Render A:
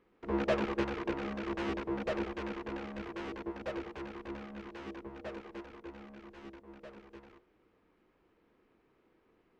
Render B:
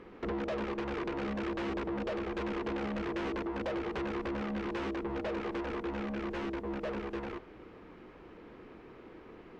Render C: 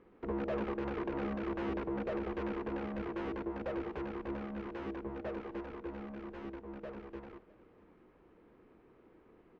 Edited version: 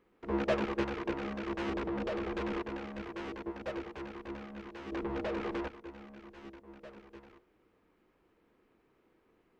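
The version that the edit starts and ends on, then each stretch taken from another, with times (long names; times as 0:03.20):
A
0:01.70–0:02.62: punch in from B
0:04.92–0:05.68: punch in from B
not used: C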